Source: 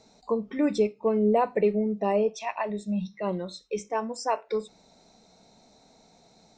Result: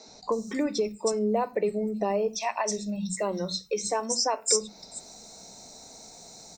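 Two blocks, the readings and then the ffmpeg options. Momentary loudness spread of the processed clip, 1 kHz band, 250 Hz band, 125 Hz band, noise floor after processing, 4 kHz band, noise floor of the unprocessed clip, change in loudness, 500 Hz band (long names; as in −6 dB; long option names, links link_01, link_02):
20 LU, −1.0 dB, −3.0 dB, −2.5 dB, −51 dBFS, +11.5 dB, −60 dBFS, −0.5 dB, −2.0 dB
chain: -filter_complex "[0:a]acompressor=threshold=-33dB:ratio=3,aexciter=amount=6.6:drive=3.8:freq=4600,acrossover=split=200|5400[link_01][link_02][link_03];[link_01]adelay=80[link_04];[link_03]adelay=320[link_05];[link_04][link_02][link_05]amix=inputs=3:normalize=0,volume=7dB"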